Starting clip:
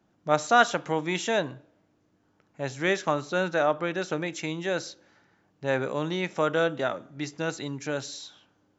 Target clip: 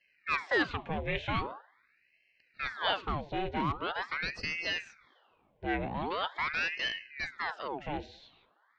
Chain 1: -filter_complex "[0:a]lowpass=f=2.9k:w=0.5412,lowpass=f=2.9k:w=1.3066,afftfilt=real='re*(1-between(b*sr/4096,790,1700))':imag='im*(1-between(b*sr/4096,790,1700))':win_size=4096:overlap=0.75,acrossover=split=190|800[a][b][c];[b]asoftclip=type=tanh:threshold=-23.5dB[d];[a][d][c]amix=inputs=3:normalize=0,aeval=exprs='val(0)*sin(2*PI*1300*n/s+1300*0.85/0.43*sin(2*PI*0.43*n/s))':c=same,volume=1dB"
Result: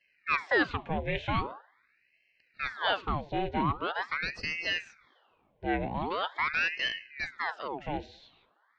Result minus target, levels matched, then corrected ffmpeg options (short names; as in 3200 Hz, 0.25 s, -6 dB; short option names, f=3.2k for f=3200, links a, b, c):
soft clip: distortion -7 dB
-filter_complex "[0:a]lowpass=f=2.9k:w=0.5412,lowpass=f=2.9k:w=1.3066,afftfilt=real='re*(1-between(b*sr/4096,790,1700))':imag='im*(1-between(b*sr/4096,790,1700))':win_size=4096:overlap=0.75,acrossover=split=190|800[a][b][c];[b]asoftclip=type=tanh:threshold=-31.5dB[d];[a][d][c]amix=inputs=3:normalize=0,aeval=exprs='val(0)*sin(2*PI*1300*n/s+1300*0.85/0.43*sin(2*PI*0.43*n/s))':c=same,volume=1dB"